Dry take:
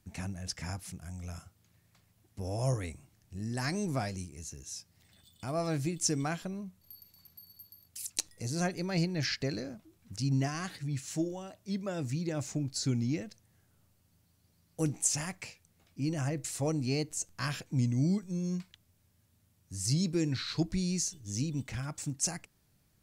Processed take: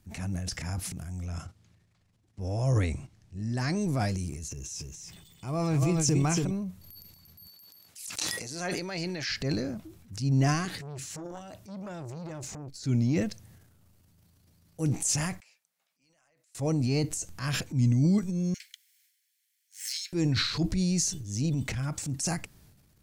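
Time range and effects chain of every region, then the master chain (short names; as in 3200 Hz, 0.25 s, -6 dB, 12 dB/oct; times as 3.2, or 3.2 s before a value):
1.26–3.81 LPF 7200 Hz + gate -60 dBFS, range -8 dB
4.48–6.51 ripple EQ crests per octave 0.73, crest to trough 6 dB + echo 0.282 s -6.5 dB
7.47–9.29 weighting filter A + sustainer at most 97 dB/s
10.65–12.84 compressor 10:1, threshold -36 dBFS + core saturation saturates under 790 Hz
15.4–16.55 HPF 530 Hz 24 dB/oct + compressor 12:1, threshold -48 dBFS + EQ curve 180 Hz 0 dB, 340 Hz -24 dB, 1400 Hz -18 dB
18.54–20.13 minimum comb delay 0.94 ms + steep high-pass 1600 Hz 72 dB/oct
whole clip: low shelf 220 Hz +5.5 dB; transient shaper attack -6 dB, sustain +9 dB; gain +2 dB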